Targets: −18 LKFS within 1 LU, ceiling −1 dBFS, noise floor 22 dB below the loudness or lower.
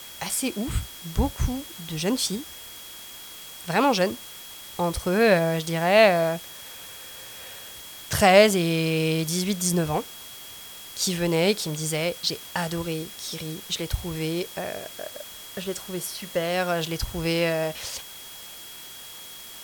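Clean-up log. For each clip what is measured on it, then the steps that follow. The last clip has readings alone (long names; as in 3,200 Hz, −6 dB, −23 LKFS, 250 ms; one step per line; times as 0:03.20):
interfering tone 3,300 Hz; level of the tone −45 dBFS; background noise floor −42 dBFS; target noise floor −47 dBFS; integrated loudness −24.5 LKFS; sample peak −3.5 dBFS; target loudness −18.0 LKFS
→ notch filter 3,300 Hz, Q 30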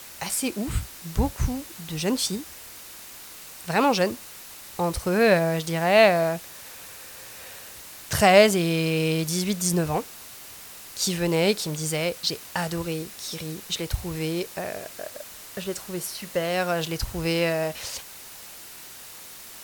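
interfering tone none found; background noise floor −43 dBFS; target noise floor −47 dBFS
→ broadband denoise 6 dB, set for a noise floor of −43 dBFS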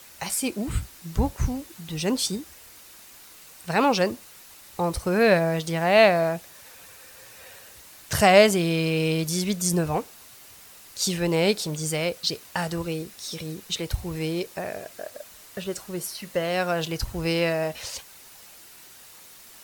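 background noise floor −48 dBFS; integrated loudness −24.5 LKFS; sample peak −3.5 dBFS; target loudness −18.0 LKFS
→ level +6.5 dB
brickwall limiter −1 dBFS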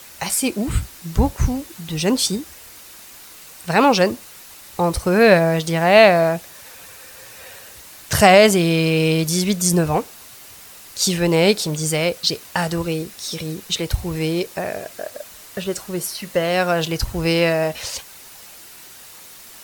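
integrated loudness −18.5 LKFS; sample peak −1.0 dBFS; background noise floor −42 dBFS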